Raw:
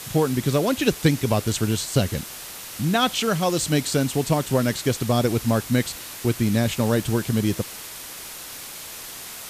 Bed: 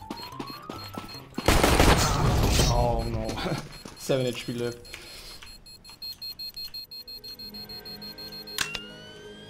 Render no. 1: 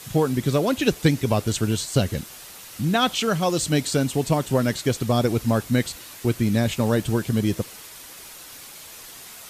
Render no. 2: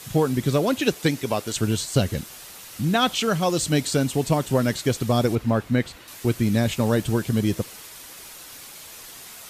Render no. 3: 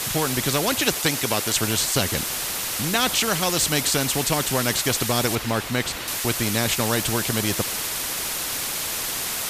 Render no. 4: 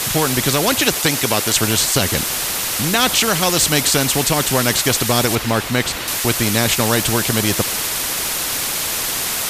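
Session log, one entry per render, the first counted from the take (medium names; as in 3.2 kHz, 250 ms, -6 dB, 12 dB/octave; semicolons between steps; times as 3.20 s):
noise reduction 6 dB, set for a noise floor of -38 dBFS
0.77–1.55 s: high-pass 160 Hz -> 490 Hz 6 dB/octave; 5.35–6.08 s: tone controls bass -1 dB, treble -12 dB
spectrum-flattening compressor 2:1
trim +6 dB; peak limiter -2 dBFS, peak gain reduction 2.5 dB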